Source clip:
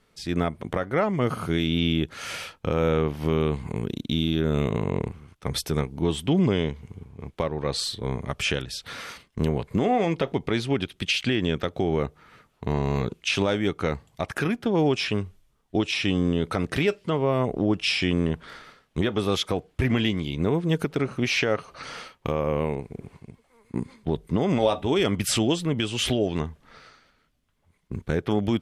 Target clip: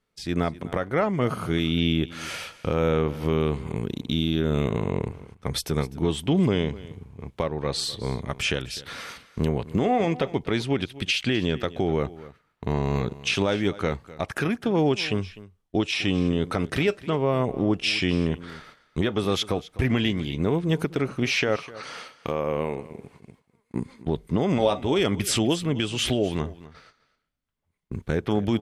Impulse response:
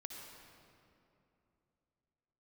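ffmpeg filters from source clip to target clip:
-filter_complex "[0:a]agate=range=-13dB:threshold=-49dB:ratio=16:detection=peak,asettb=1/sr,asplit=3[a][b][c];[a]atrim=end=21.564[d];[b]atrim=start=21.56:end=23.75,asetpts=PTS-STARTPTS,afade=t=in:d=0.004:c=qsin,afade=t=out:st=2.186:d=0.004:c=qsin,lowshelf=f=120:g=-12[e];[c]atrim=start=23.746[f];[d][e]acrossfade=d=0.004:c1=hsin:c2=qsin[g];[g][f]acrossfade=d=0.004:c1=qsin:c2=hsin,aecho=1:1:253:0.126"

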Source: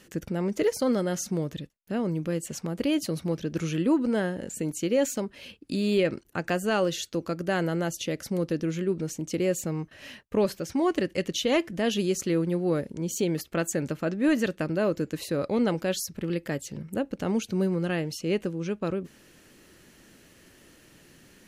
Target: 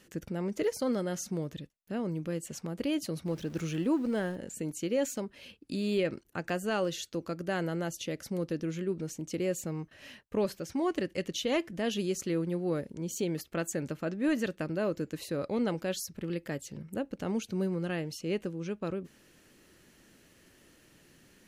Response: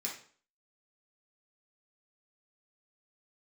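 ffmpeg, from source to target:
-filter_complex "[0:a]asettb=1/sr,asplit=3[a][b][c];[a]atrim=end=3.264[d];[b]atrim=start=3.26:end=4.36,asetpts=PTS-STARTPTS,afade=t=in:d=0.004:c=qsin,afade=t=out:st=1.096:d=0.004:c=qsin,aeval=exprs='val(0)+0.5*0.0075*sgn(val(0))':c=same[e];[c]atrim=start=4.356[f];[d][e]acrossfade=d=0.004:c1=hsin:c2=qsin[g];[g][f]acrossfade=d=0.004:c1=qsin:c2=hsin,volume=-5.5dB"

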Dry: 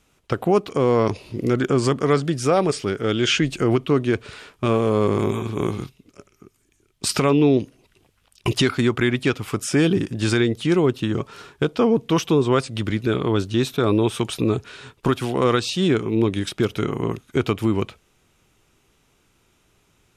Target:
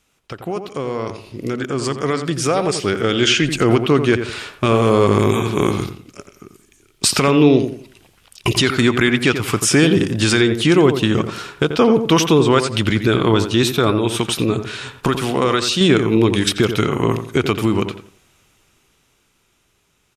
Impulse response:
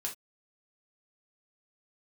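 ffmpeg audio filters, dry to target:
-filter_complex "[0:a]tiltshelf=f=1.1k:g=-3,asettb=1/sr,asplit=3[a][b][c];[a]atrim=end=13.904[d];[b]atrim=start=13.9:end=15.81,asetpts=PTS-STARTPTS,afade=t=in:d=0.004:c=qsin,afade=t=out:st=1.906:d=0.004:c=qsin,acompressor=threshold=-28dB:ratio=2[e];[c]atrim=start=15.806[f];[d][e]acrossfade=d=0.004:c1=hsin:c2=qsin[g];[g][f]acrossfade=d=0.004:c1=qsin:c2=hsin,alimiter=limit=-13.5dB:level=0:latency=1:release=214,dynaudnorm=f=450:g=11:m=14dB,asplit=2[h][i];[i]adelay=87,lowpass=f=1.9k:p=1,volume=-8dB,asplit=2[j][k];[k]adelay=87,lowpass=f=1.9k:p=1,volume=0.33,asplit=2[l][m];[m]adelay=87,lowpass=f=1.9k:p=1,volume=0.33,asplit=2[n][o];[o]adelay=87,lowpass=f=1.9k:p=1,volume=0.33[p];[j][l][n][p]amix=inputs=4:normalize=0[q];[h][q]amix=inputs=2:normalize=0,volume=-2dB"

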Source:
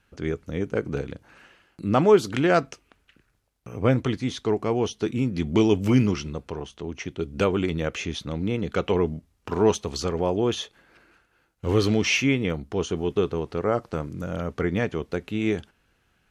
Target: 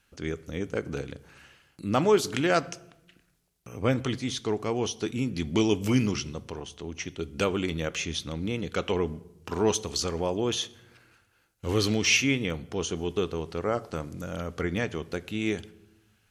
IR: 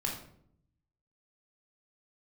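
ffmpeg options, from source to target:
-filter_complex "[0:a]highshelf=f=3k:g=11,asplit=2[a][b];[1:a]atrim=start_sample=2205,asetrate=27783,aresample=44100[c];[b][c]afir=irnorm=-1:irlink=0,volume=-22.5dB[d];[a][d]amix=inputs=2:normalize=0,volume=-5.5dB"

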